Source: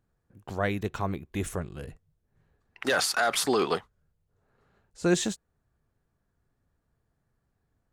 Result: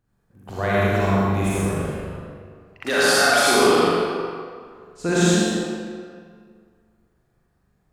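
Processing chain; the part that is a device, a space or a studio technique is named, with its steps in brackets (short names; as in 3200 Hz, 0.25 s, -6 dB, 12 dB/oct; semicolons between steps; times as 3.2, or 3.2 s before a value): tunnel (flutter echo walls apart 7.1 m, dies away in 0.67 s; reverb RT60 2.0 s, pre-delay 51 ms, DRR -7 dB)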